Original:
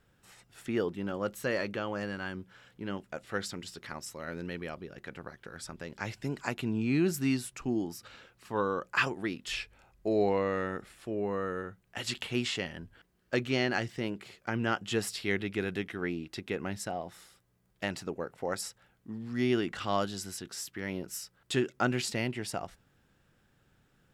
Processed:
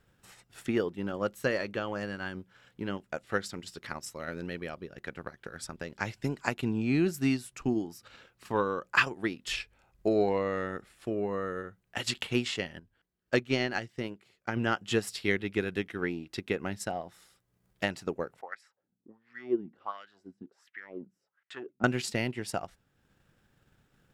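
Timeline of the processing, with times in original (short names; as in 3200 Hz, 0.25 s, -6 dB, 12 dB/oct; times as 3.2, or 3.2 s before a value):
12.79–14.57 upward expander, over -44 dBFS
18.41–21.84 wah 1.4 Hz 200–2100 Hz, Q 3.8
whole clip: transient shaper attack +5 dB, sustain -5 dB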